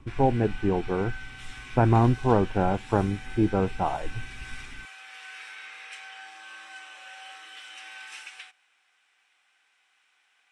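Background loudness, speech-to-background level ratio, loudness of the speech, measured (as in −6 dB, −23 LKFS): −42.5 LKFS, 17.0 dB, −25.5 LKFS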